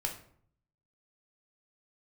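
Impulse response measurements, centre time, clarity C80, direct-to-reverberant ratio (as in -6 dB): 18 ms, 13.0 dB, 1.5 dB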